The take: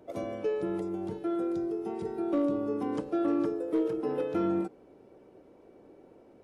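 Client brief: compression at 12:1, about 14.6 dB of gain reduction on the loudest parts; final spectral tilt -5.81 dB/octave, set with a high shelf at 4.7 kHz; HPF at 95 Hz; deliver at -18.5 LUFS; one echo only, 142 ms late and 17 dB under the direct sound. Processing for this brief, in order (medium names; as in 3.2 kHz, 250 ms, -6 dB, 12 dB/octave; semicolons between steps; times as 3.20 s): high-pass 95 Hz; treble shelf 4.7 kHz -7.5 dB; compression 12:1, threshold -39 dBFS; delay 142 ms -17 dB; trim +24.5 dB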